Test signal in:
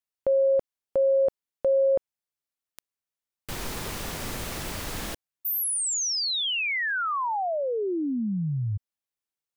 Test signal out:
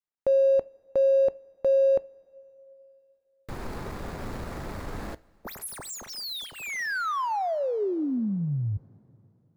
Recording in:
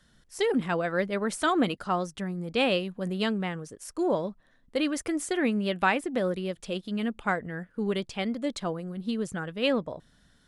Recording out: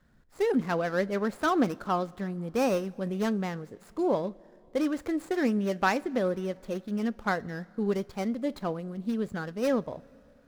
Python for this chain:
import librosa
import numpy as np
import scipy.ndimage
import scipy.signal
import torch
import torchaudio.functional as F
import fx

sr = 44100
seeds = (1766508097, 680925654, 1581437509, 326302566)

y = scipy.ndimage.median_filter(x, 15, mode='constant')
y = fx.rev_double_slope(y, sr, seeds[0], early_s=0.24, late_s=3.2, knee_db=-18, drr_db=16.5)